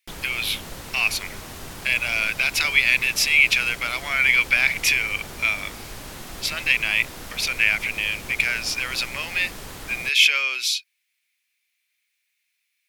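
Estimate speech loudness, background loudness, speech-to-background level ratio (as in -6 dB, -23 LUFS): -20.5 LUFS, -37.0 LUFS, 16.5 dB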